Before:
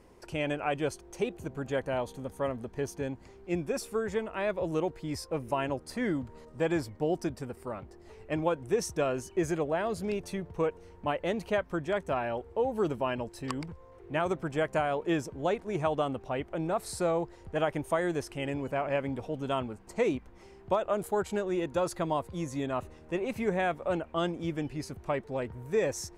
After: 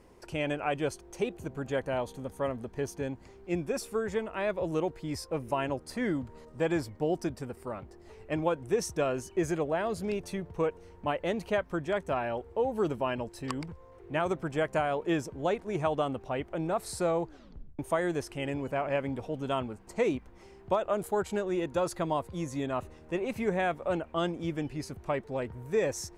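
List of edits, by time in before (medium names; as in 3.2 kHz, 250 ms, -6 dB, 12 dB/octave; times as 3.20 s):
17.24 s: tape stop 0.55 s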